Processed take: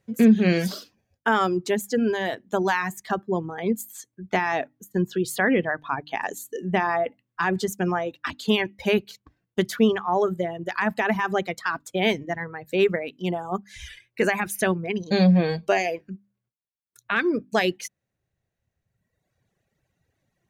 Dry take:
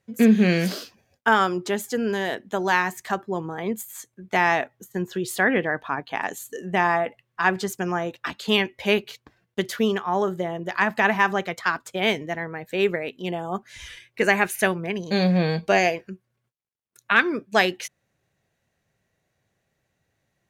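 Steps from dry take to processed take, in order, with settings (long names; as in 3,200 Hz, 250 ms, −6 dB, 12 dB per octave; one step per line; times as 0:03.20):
brickwall limiter −12 dBFS, peak gain reduction 7 dB
low-shelf EQ 390 Hz +6.5 dB
mains-hum notches 50/100/150/200/250/300 Hz
reverb reduction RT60 1.6 s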